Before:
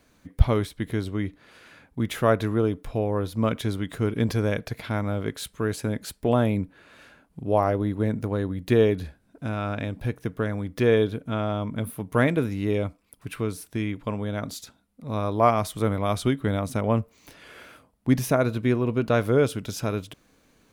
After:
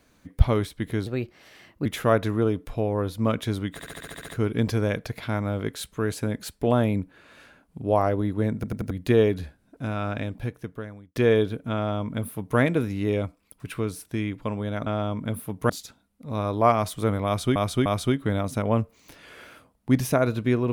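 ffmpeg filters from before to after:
-filter_complex "[0:a]asplit=20[a][b][c][d][e][f][g][h][i][j][k][l][m][n][o][p][q][r][s][t];[a]atrim=end=1.064[u];[b]atrim=start=1.06:end=2.03,asetpts=PTS-STARTPTS,asetrate=53802,aresample=44100,atrim=end_sample=35063,asetpts=PTS-STARTPTS[v];[c]atrim=start=2.026:end=3.972[w];[d]atrim=start=3.898:end=3.972[x];[e]atrim=start=3.898:end=3.972[y];[f]atrim=start=3.898:end=3.972[z];[g]atrim=start=3.898:end=3.972[aa];[h]atrim=start=3.898:end=3.972[ab];[i]atrim=start=3.898:end=3.972[ac];[j]atrim=start=3.898:end=3.972[ad];[k]atrim=start=3.898:end=8.252[ae];[l]atrim=start=8.158:end=8.252[af];[m]atrim=start=8.158:end=8.252[ag];[n]atrim=start=8.158:end=8.252[ah];[o]atrim=start=8.518:end=10.77,asetpts=PTS-STARTPTS,afade=t=out:st=1.312:d=0.94[ai];[p]atrim=start=10.77:end=14.482,asetpts=PTS-STARTPTS,afade=t=in:d=0.004:c=hsin[aj];[q]atrim=start=11.368:end=12.202[ak];[r]atrim=start=14.478:end=16.342[al];[s]atrim=start=16.038:end=16.342[am];[t]atrim=start=16.038[an];[u][v]acrossfade=d=0.004:c1=hsin:c2=hsin[ao];[ao][w]acrossfade=d=0.004:c1=hsin:c2=hsin[ap];[ap][x]acrossfade=d=0.004:c1=hsin:c2=hsin[aq];[aq][y]acrossfade=d=0.004:c1=hsin:c2=hsin[ar];[ar][z]acrossfade=d=0.004:c1=hsin:c2=hsin[as];[as][aa]acrossfade=d=0.004:c1=hsin:c2=hsin[at];[at][ab]acrossfade=d=0.004:c1=hsin:c2=hsin[au];[au][ac]acrossfade=d=0.004:c1=hsin:c2=hsin[av];[av][ad]acrossfade=d=0.004:c1=hsin:c2=hsin[aw];[aw][ae]acrossfade=d=0.004:c1=hsin:c2=hsin[ax];[ax][af]acrossfade=d=0.004:c1=hsin:c2=hsin[ay];[ay][ag]acrossfade=d=0.004:c1=hsin:c2=hsin[az];[az][ah]acrossfade=d=0.004:c1=hsin:c2=hsin[ba];[ai][aj]concat=n=2:v=0:a=1[bb];[ba][bb]acrossfade=d=0.004:c1=hsin:c2=hsin[bc];[bc][ak]acrossfade=d=0.004:c1=hsin:c2=hsin[bd];[bd][al]acrossfade=d=0.004:c1=hsin:c2=hsin[be];[be][am]acrossfade=d=0.004:c1=hsin:c2=hsin[bf];[bf][an]acrossfade=d=0.004:c1=hsin:c2=hsin"

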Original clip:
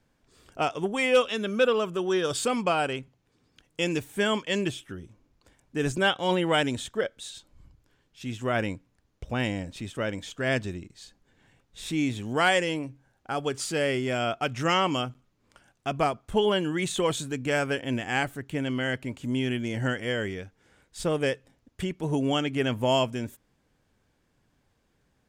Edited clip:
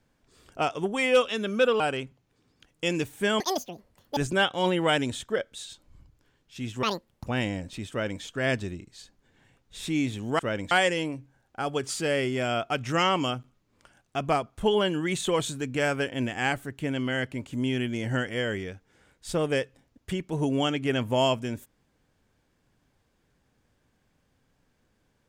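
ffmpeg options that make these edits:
-filter_complex "[0:a]asplit=8[a][b][c][d][e][f][g][h];[a]atrim=end=1.802[i];[b]atrim=start=2.758:end=4.364[j];[c]atrim=start=4.36:end=5.82,asetpts=PTS-STARTPTS,asetrate=83790,aresample=44100,atrim=end_sample=33887,asetpts=PTS-STARTPTS[k];[d]atrim=start=5.816:end=8.484[l];[e]atrim=start=8.48:end=9.29,asetpts=PTS-STARTPTS,asetrate=82467,aresample=44100,atrim=end_sample=19102,asetpts=PTS-STARTPTS[m];[f]atrim=start=9.286:end=12.422[n];[g]atrim=start=9.928:end=10.252[o];[h]atrim=start=12.418[p];[i][j]acrossfade=d=0.004:c1=hsin:c2=hsin[q];[q][k]acrossfade=d=0.004:c1=hsin:c2=hsin[r];[r][l]acrossfade=d=0.004:c1=hsin:c2=hsin[s];[s][m]acrossfade=d=0.004:c1=hsin:c2=hsin[t];[t][n]acrossfade=d=0.004:c1=hsin:c2=hsin[u];[u][o]acrossfade=d=0.004:c1=hsin:c2=hsin[v];[v][p]acrossfade=d=0.004:c1=hsin:c2=hsin"

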